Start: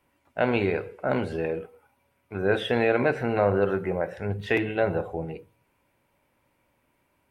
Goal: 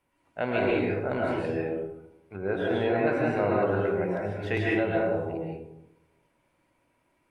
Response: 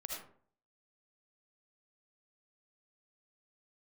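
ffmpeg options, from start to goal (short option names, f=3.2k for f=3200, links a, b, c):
-filter_complex "[0:a]asettb=1/sr,asplit=3[a][b][c];[a]atrim=end=2.364[d];[b]atrim=start=2.36:end=3.07,asetpts=PTS-STARTPTS,afade=t=in:d=0.004:c=qsin,afade=t=out:st=0.706:d=0.004:c=qsin,highshelf=f=2.2k:g=-11[e];[c]atrim=start=3.066[f];[d][e]acrossfade=d=0.004:c1=hsin:c2=qsin[g];[g][f]acrossfade=d=0.004:c1=qsin:c2=hsin[h];[1:a]atrim=start_sample=2205,asetrate=22491,aresample=44100[i];[h][i]afir=irnorm=-1:irlink=0,volume=-4.5dB"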